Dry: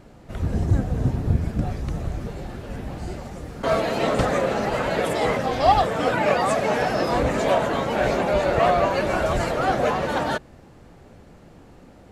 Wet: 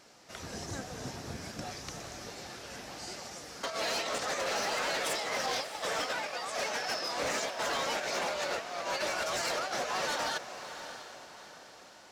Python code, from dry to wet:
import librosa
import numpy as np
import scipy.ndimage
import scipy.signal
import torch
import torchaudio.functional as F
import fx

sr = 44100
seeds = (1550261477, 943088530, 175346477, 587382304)

p1 = fx.highpass(x, sr, hz=1500.0, slope=6)
p2 = fx.peak_eq(p1, sr, hz=5500.0, db=11.0, octaves=0.79)
p3 = fx.over_compress(p2, sr, threshold_db=-30.0, ratio=-0.5)
p4 = np.clip(p3, -10.0 ** (-25.0 / 20.0), 10.0 ** (-25.0 / 20.0))
p5 = p4 + fx.echo_diffused(p4, sr, ms=648, feedback_pct=45, wet_db=-11, dry=0)
y = p5 * librosa.db_to_amplitude(-3.0)